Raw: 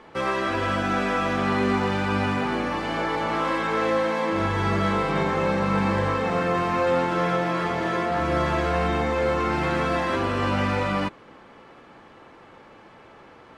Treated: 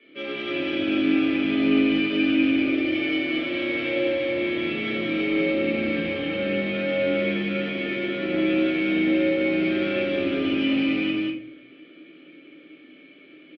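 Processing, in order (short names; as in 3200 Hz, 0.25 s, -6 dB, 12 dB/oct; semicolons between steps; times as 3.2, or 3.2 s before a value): vowel filter i; low shelf 320 Hz -11 dB; notch 2000 Hz, Q 11; added harmonics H 4 -18 dB, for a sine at -28 dBFS; frequency shift +24 Hz; speaker cabinet 100–3900 Hz, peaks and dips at 100 Hz +4 dB, 160 Hz +8 dB, 600 Hz +5 dB, 970 Hz -4 dB, 1600 Hz -5 dB; loudspeakers at several distances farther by 40 m -12 dB, 67 m -2 dB; reverb RT60 0.55 s, pre-delay 5 ms, DRR -6 dB; gain +7.5 dB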